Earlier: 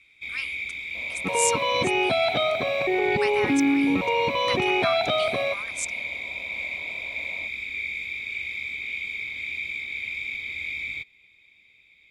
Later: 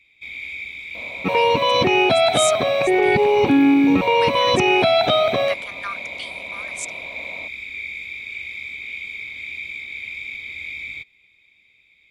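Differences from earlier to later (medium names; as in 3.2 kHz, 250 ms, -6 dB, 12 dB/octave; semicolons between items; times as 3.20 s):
speech: entry +1.00 s; second sound +7.0 dB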